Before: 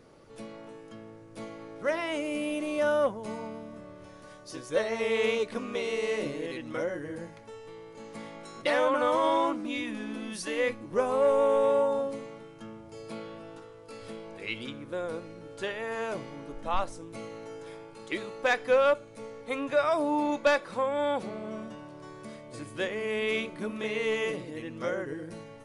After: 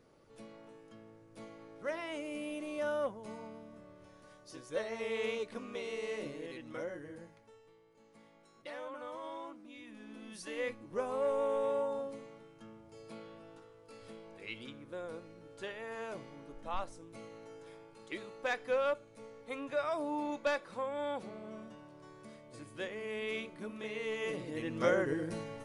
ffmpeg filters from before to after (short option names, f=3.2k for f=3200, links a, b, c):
-af "volume=12.5dB,afade=t=out:st=6.93:d=0.87:silence=0.316228,afade=t=in:st=9.77:d=0.83:silence=0.316228,afade=t=in:st=24.18:d=0.67:silence=0.266073"